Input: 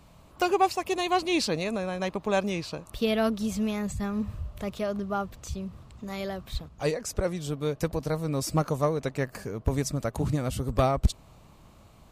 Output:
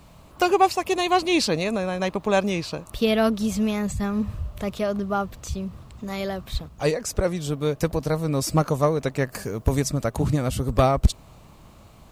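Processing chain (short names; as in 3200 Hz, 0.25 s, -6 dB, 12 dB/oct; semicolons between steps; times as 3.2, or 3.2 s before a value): requantised 12-bit, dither none; 9.32–9.8 high shelf 4900 Hz +6.5 dB; gain +5 dB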